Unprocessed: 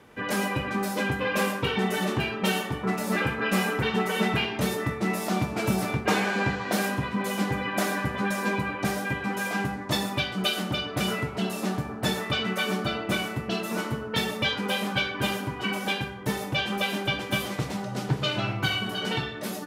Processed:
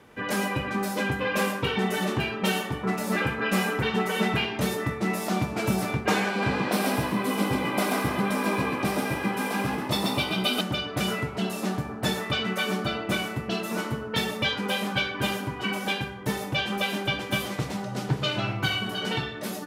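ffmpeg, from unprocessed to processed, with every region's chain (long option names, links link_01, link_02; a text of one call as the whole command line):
ffmpeg -i in.wav -filter_complex "[0:a]asettb=1/sr,asplit=3[link_01][link_02][link_03];[link_01]atrim=end=6.294[link_04];[link_02]atrim=start=6.29:end=10.61,asetpts=PTS-STARTPTS,afade=type=in:duration=0.004:curve=qsin,afade=type=out:start_time=4.316:duration=0.004:curve=qsin,equalizer=frequency=6700:width_type=o:width=0.21:gain=-8,bandreject=frequency=1700:width=5.1,asplit=6[link_05][link_06][link_07][link_08][link_09][link_10];[link_06]adelay=133,afreqshift=57,volume=-3dB[link_11];[link_07]adelay=266,afreqshift=114,volume=-10.5dB[link_12];[link_08]adelay=399,afreqshift=171,volume=-18.1dB[link_13];[link_09]adelay=532,afreqshift=228,volume=-25.6dB[link_14];[link_10]adelay=665,afreqshift=285,volume=-33.1dB[link_15];[link_05][link_11][link_12][link_13][link_14][link_15]amix=inputs=6:normalize=0,atrim=end_sample=190512[link_16];[link_03]atrim=start=10.606[link_17];[link_04][link_16]acrossfade=duration=0.004:curve1=hsin:curve2=qsin[link_18];[link_18][link_17]acrossfade=duration=0.004:curve1=qsin:curve2=hsin" out.wav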